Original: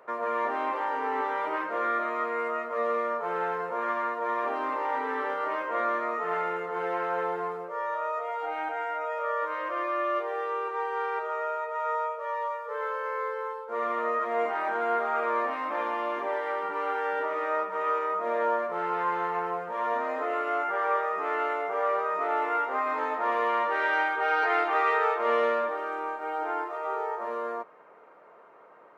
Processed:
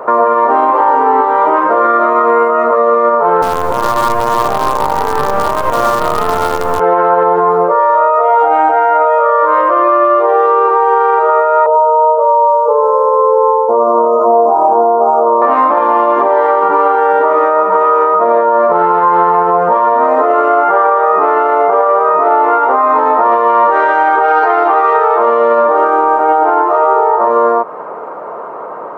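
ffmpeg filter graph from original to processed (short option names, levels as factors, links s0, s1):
-filter_complex "[0:a]asettb=1/sr,asplit=3[s0][s1][s2];[s0]atrim=end=3.424[s3];[s1]atrim=start=3.42:end=6.8,asetpts=PTS-STARTPTS,afade=t=in:d=0.004:c=qsin,afade=t=out:st=3.376:d=0.004:c=qsin,highpass=f=320:w=0.5412,highpass=f=320:w=1.3066,acrusher=bits=5:dc=4:mix=0:aa=0.000001[s4];[s2]atrim=start=6.796[s5];[s3][s4]acrossfade=d=0.004:c1=hsin:c2=qsin[s6];[s6][s5]acrossfade=d=0.004:c1=qsin:c2=hsin,asettb=1/sr,asplit=3[s7][s8][s9];[s7]atrim=end=11.664[s10];[s8]atrim=start=11.66:end=15.42,asetpts=PTS-STARTPTS,afade=t=in:d=0.004:c=qsin,afade=t=out:st=3.756:d=0.004:c=qsin,asuperstop=centerf=2300:order=8:qfactor=0.53,equalizer=f=2100:w=0.72:g=6[s11];[s9]atrim=start=15.416[s12];[s10][s11]acrossfade=d=0.004:c1=hsin:c2=qsin[s13];[s13][s12]acrossfade=d=0.004:c1=qsin:c2=hsin,highshelf=f=1500:t=q:w=1.5:g=-10.5,acompressor=threshold=0.02:ratio=3,alimiter=level_in=28.2:limit=0.891:release=50:level=0:latency=1,volume=0.891"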